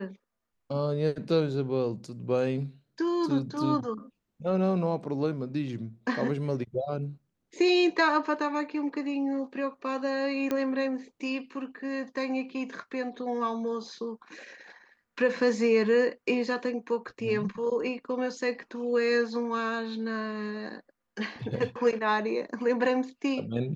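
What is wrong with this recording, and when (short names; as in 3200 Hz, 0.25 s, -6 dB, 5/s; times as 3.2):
10.51 pop -16 dBFS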